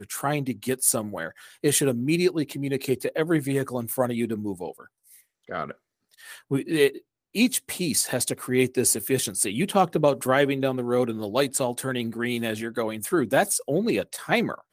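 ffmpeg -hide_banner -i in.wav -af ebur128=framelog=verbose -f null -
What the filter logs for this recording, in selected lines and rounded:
Integrated loudness:
  I:         -24.8 LUFS
  Threshold: -35.3 LUFS
Loudness range:
  LRA:         6.0 LU
  Threshold: -45.4 LUFS
  LRA low:   -29.2 LUFS
  LRA high:  -23.2 LUFS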